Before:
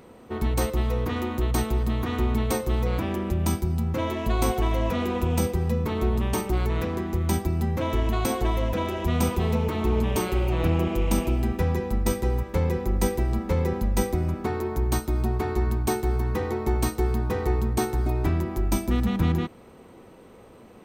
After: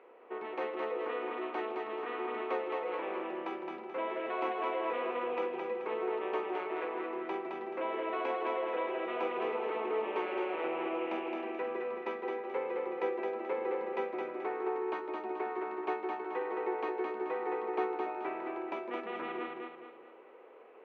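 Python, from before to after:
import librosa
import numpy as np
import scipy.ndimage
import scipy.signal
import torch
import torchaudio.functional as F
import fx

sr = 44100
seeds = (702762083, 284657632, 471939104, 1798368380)

y = scipy.signal.sosfilt(scipy.signal.ellip(3, 1.0, 60, [390.0, 2600.0], 'bandpass', fs=sr, output='sos'), x)
y = fx.echo_feedback(y, sr, ms=216, feedback_pct=40, wet_db=-3.5)
y = y * 10.0 ** (-5.5 / 20.0)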